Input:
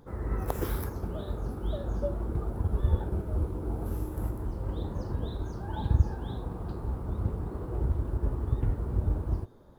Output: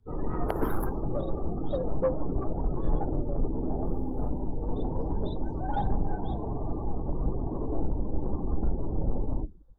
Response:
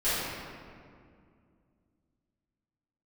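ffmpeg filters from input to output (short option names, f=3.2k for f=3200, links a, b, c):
-af "bandreject=f=68.11:t=h:w=4,bandreject=f=136.22:t=h:w=4,bandreject=f=204.33:t=h:w=4,bandreject=f=272.44:t=h:w=4,bandreject=f=340.55:t=h:w=4,bandreject=f=408.66:t=h:w=4,afftdn=nr=28:nf=-42,asoftclip=type=tanh:threshold=-25.5dB,afreqshift=-53,adynamicequalizer=threshold=0.00251:dfrequency=760:dqfactor=0.83:tfrequency=760:tqfactor=0.83:attack=5:release=100:ratio=0.375:range=2:mode=boostabove:tftype=bell,volume=6.5dB"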